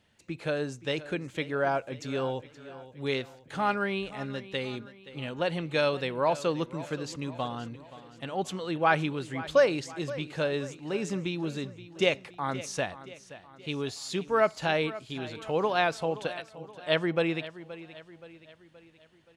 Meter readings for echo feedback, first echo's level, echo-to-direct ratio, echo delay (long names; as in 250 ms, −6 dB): 49%, −16.0 dB, −15.0 dB, 524 ms